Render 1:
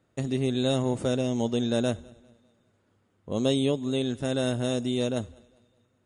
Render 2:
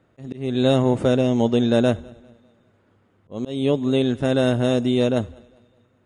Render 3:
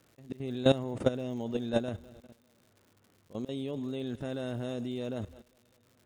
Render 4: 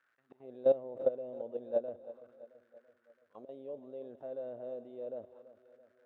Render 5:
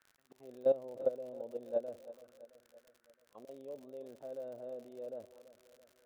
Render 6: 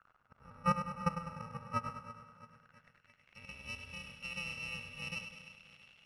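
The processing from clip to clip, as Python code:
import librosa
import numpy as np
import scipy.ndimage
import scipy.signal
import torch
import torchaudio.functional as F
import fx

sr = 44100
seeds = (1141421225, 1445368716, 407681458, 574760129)

y1 = fx.bass_treble(x, sr, bass_db=-1, treble_db=-11)
y1 = fx.auto_swell(y1, sr, attack_ms=320.0)
y1 = y1 * librosa.db_to_amplitude(8.5)
y2 = fx.level_steps(y1, sr, step_db=16)
y2 = fx.dmg_crackle(y2, sr, seeds[0], per_s=170.0, level_db=-47.0)
y2 = y2 * librosa.db_to_amplitude(-3.5)
y3 = fx.auto_wah(y2, sr, base_hz=550.0, top_hz=1600.0, q=4.8, full_db=-31.5, direction='down')
y3 = fx.echo_feedback(y3, sr, ms=334, feedback_pct=54, wet_db=-16)
y3 = y3 * librosa.db_to_amplitude(1.5)
y4 = fx.dmg_crackle(y3, sr, seeds[1], per_s=75.0, level_db=-46.0)
y4 = y4 * librosa.db_to_amplitude(-2.5)
y5 = fx.bit_reversed(y4, sr, seeds[2], block=128)
y5 = fx.filter_sweep_lowpass(y5, sr, from_hz=1300.0, to_hz=2800.0, start_s=2.35, end_s=3.64, q=3.8)
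y5 = fx.echo_feedback(y5, sr, ms=101, feedback_pct=57, wet_db=-9.0)
y5 = y5 * librosa.db_to_amplitude(7.0)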